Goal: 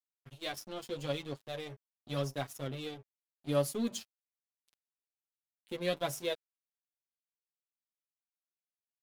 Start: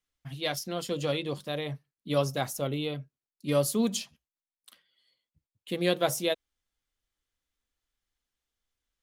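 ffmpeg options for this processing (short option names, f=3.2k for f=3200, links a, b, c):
-af "aeval=exprs='sgn(val(0))*max(abs(val(0))-0.00944,0)':c=same,flanger=delay=7:depth=2.5:regen=0:speed=0.83:shape=sinusoidal,volume=-3dB"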